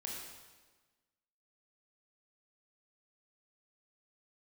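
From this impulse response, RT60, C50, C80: 1.3 s, 0.5 dB, 2.5 dB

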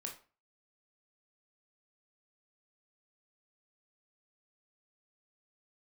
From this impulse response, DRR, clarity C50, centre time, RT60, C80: 1.0 dB, 9.5 dB, 18 ms, 0.35 s, 15.5 dB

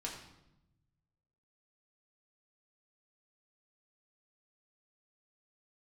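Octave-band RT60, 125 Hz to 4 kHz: 1.9, 1.3, 0.95, 0.85, 0.75, 0.70 seconds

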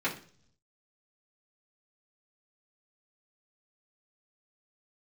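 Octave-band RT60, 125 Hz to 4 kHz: 1.0, 0.75, 0.55, 0.40, 0.45, 0.55 seconds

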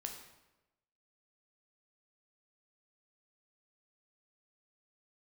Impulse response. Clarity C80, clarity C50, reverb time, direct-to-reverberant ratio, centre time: 8.0 dB, 6.0 dB, 1.0 s, 2.5 dB, 28 ms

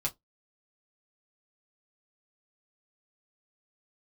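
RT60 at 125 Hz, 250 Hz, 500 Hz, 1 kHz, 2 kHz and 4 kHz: 0.15, 0.20, 0.15, 0.15, 0.10, 0.10 seconds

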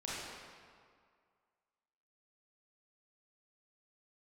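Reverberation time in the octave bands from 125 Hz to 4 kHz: 1.8, 1.9, 2.0, 2.1, 1.7, 1.4 seconds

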